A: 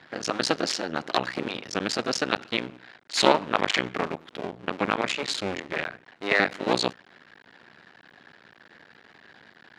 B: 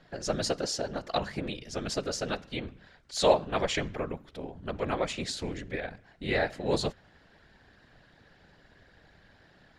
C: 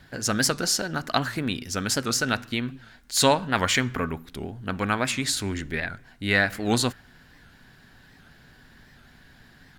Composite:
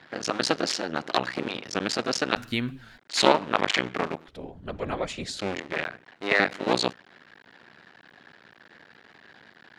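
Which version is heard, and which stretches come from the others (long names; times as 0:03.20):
A
0:02.37–0:02.98: punch in from C
0:04.28–0:05.39: punch in from B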